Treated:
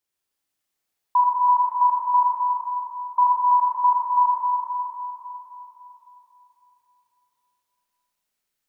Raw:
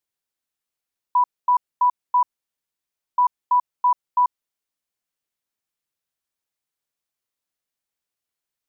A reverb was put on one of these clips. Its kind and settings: Schroeder reverb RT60 3.5 s, combs from 29 ms, DRR -4.5 dB

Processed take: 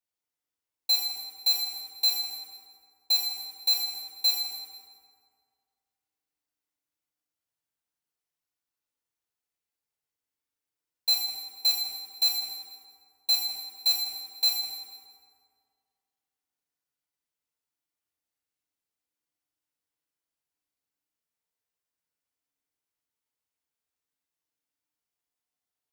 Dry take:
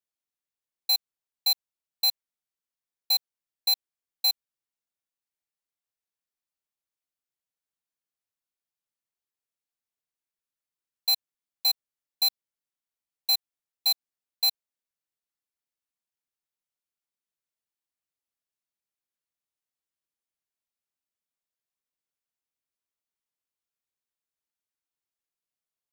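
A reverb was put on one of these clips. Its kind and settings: FDN reverb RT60 2.1 s, low-frequency decay 1×, high-frequency decay 0.6×, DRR -2.5 dB; gain -2 dB

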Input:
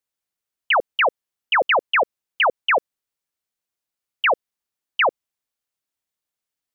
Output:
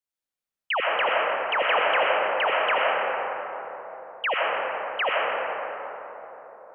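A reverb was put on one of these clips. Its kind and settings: digital reverb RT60 4.2 s, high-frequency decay 0.3×, pre-delay 45 ms, DRR -5 dB; gain -8.5 dB

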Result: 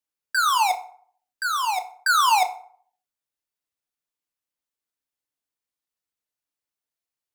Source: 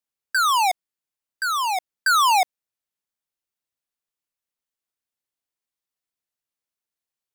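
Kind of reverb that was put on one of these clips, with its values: FDN reverb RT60 0.55 s, low-frequency decay 0.85×, high-frequency decay 0.6×, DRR 6.5 dB; gain -2 dB

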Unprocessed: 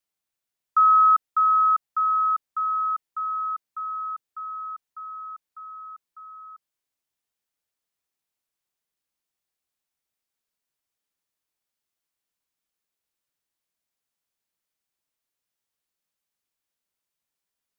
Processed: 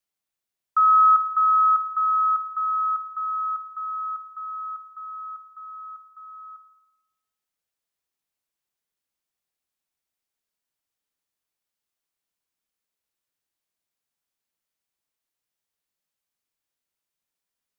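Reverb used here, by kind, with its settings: spring tank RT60 1 s, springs 55 ms, chirp 70 ms, DRR 13 dB; gain -1 dB

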